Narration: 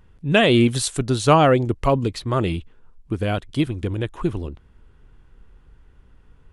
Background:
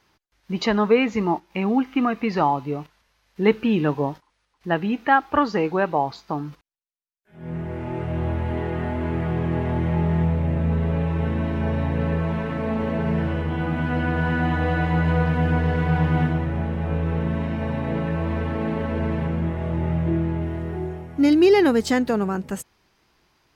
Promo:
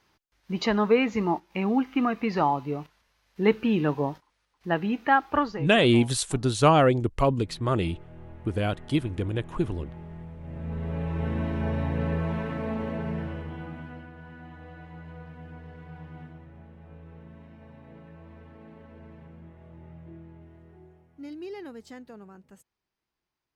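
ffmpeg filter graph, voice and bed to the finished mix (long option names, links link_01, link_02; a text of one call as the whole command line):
ffmpeg -i stem1.wav -i stem2.wav -filter_complex "[0:a]adelay=5350,volume=-4dB[link_01];[1:a]volume=13dB,afade=type=out:start_time=5.34:duration=0.33:silence=0.133352,afade=type=in:start_time=10.38:duration=0.98:silence=0.149624,afade=type=out:start_time=12.4:duration=1.7:silence=0.112202[link_02];[link_01][link_02]amix=inputs=2:normalize=0" out.wav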